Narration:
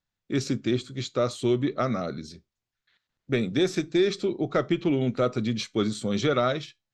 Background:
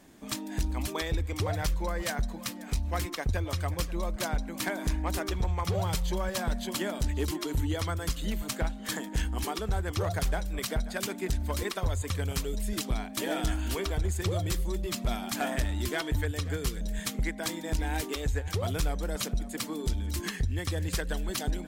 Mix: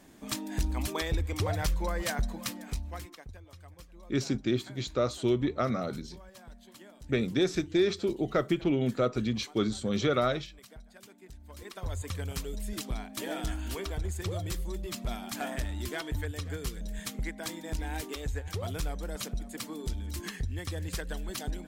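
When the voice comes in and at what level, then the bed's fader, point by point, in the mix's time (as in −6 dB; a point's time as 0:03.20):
3.80 s, −3.0 dB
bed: 0:02.55 0 dB
0:03.40 −20 dB
0:11.42 −20 dB
0:11.94 −4.5 dB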